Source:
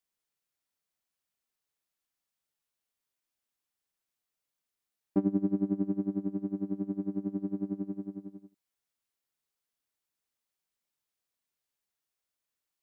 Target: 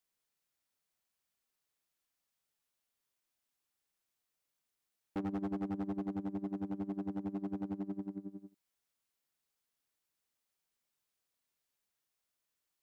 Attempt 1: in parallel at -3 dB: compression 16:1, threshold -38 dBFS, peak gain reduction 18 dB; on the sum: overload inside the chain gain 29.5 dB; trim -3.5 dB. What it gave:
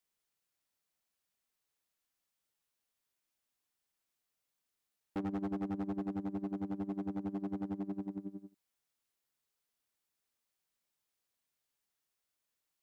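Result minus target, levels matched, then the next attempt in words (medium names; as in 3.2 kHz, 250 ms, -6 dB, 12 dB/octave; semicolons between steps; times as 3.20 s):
compression: peak gain reduction -7.5 dB
in parallel at -3 dB: compression 16:1, threshold -46 dBFS, peak gain reduction 25.5 dB; on the sum: overload inside the chain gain 29.5 dB; trim -3.5 dB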